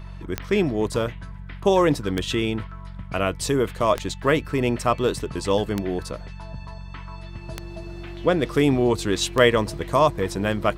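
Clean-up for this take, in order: de-click; de-hum 46.5 Hz, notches 4

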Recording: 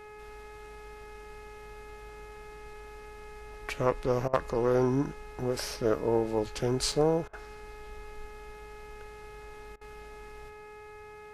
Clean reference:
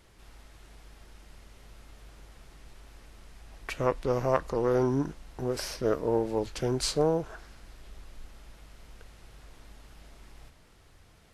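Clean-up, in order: clip repair -11.5 dBFS; de-hum 421.9 Hz, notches 6; interpolate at 6.92, 3.4 ms; interpolate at 4.28/7.28/9.76, 51 ms

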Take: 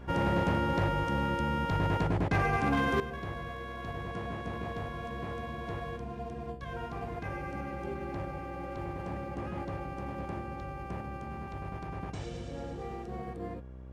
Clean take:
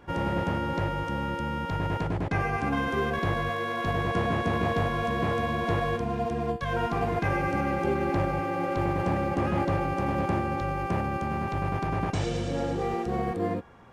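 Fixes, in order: clip repair -21.5 dBFS; de-hum 63.9 Hz, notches 10; gain 0 dB, from 3 s +11.5 dB

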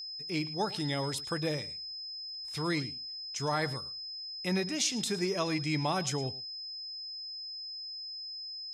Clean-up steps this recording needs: notch 5100 Hz, Q 30; inverse comb 0.11 s -18.5 dB

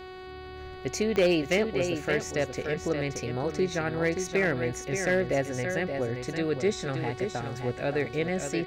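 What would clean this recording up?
clip repair -17 dBFS; de-click; de-hum 371.6 Hz, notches 13; inverse comb 0.575 s -7 dB

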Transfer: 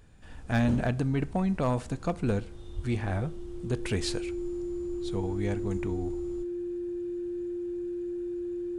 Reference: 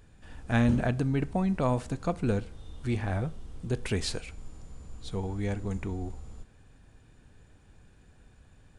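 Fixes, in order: clip repair -20 dBFS; notch 350 Hz, Q 30; de-plosive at 2.75

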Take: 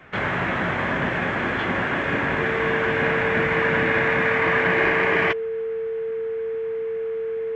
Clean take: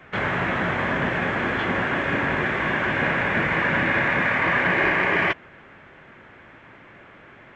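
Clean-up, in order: notch 450 Hz, Q 30

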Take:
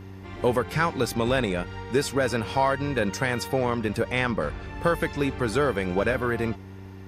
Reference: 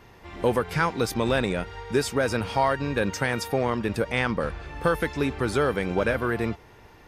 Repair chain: de-hum 95.8 Hz, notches 4

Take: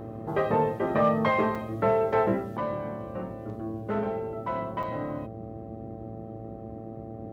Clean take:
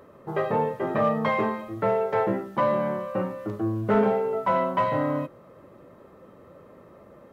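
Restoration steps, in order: de-hum 111.7 Hz, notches 7; interpolate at 1.55/4.83, 4.5 ms; noise print and reduce 11 dB; gain correction +8.5 dB, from 2.57

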